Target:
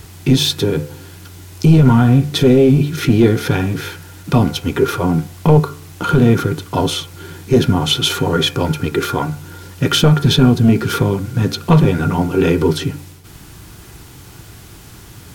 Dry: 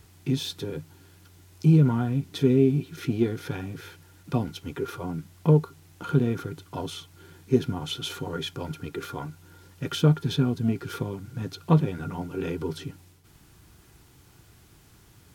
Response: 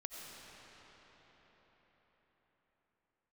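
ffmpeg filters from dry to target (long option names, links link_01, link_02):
-af "apsyclip=21dB,bandreject=frequency=72.8:width_type=h:width=4,bandreject=frequency=145.6:width_type=h:width=4,bandreject=frequency=218.4:width_type=h:width=4,bandreject=frequency=291.2:width_type=h:width=4,bandreject=frequency=364:width_type=h:width=4,bandreject=frequency=436.8:width_type=h:width=4,bandreject=frequency=509.6:width_type=h:width=4,bandreject=frequency=582.4:width_type=h:width=4,bandreject=frequency=655.2:width_type=h:width=4,bandreject=frequency=728:width_type=h:width=4,bandreject=frequency=800.8:width_type=h:width=4,bandreject=frequency=873.6:width_type=h:width=4,bandreject=frequency=946.4:width_type=h:width=4,bandreject=frequency=1019.2:width_type=h:width=4,bandreject=frequency=1092:width_type=h:width=4,bandreject=frequency=1164.8:width_type=h:width=4,bandreject=frequency=1237.6:width_type=h:width=4,bandreject=frequency=1310.4:width_type=h:width=4,bandreject=frequency=1383.2:width_type=h:width=4,bandreject=frequency=1456:width_type=h:width=4,bandreject=frequency=1528.8:width_type=h:width=4,bandreject=frequency=1601.6:width_type=h:width=4,bandreject=frequency=1674.4:width_type=h:width=4,bandreject=frequency=1747.2:width_type=h:width=4,bandreject=frequency=1820:width_type=h:width=4,bandreject=frequency=1892.8:width_type=h:width=4,bandreject=frequency=1965.6:width_type=h:width=4,bandreject=frequency=2038.4:width_type=h:width=4,bandreject=frequency=2111.2:width_type=h:width=4,bandreject=frequency=2184:width_type=h:width=4,bandreject=frequency=2256.8:width_type=h:width=4,bandreject=frequency=2329.6:width_type=h:width=4,bandreject=frequency=2402.4:width_type=h:width=4,bandreject=frequency=2475.2:width_type=h:width=4,bandreject=frequency=2548:width_type=h:width=4,volume=-4dB"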